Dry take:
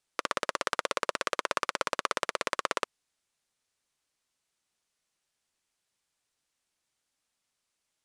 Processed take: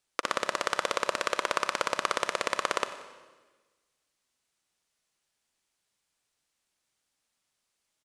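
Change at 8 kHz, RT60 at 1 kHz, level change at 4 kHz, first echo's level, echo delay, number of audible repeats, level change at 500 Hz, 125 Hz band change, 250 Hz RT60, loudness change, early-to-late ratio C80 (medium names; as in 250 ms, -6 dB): +2.0 dB, 1.3 s, +2.0 dB, -18.5 dB, 91 ms, 2, +2.0 dB, +1.5 dB, 1.5 s, +2.0 dB, 12.0 dB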